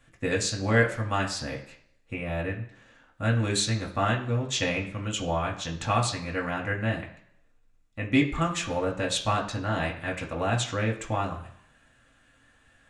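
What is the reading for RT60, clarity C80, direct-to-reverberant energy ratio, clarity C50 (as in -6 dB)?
0.65 s, 13.5 dB, -1.5 dB, 10.0 dB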